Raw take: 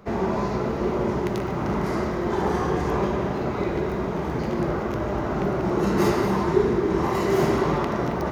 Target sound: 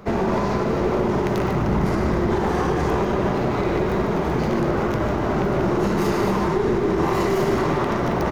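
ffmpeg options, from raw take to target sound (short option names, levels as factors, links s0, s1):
-filter_complex "[0:a]asettb=1/sr,asplit=3[s0][s1][s2];[s0]atrim=end=1.554[s3];[s1]atrim=start=1.55:end=2.41,asetpts=PTS-STARTPTS,afade=t=in:d=0.004:c=qsin,afade=t=out:st=0.856:d=0.004:c=qsin,lowshelf=f=160:g=9[s4];[s2]atrim=start=2.406[s5];[s3][s4]acrossfade=d=0.004:c1=hsin:c2=qsin[s6];[s6][s5]acrossfade=d=0.004:c1=qsin:c2=hsin,alimiter=limit=0.126:level=0:latency=1:release=97,aeval=exprs='clip(val(0),-1,0.0501)':c=same,aecho=1:1:148:0.335,volume=2.11"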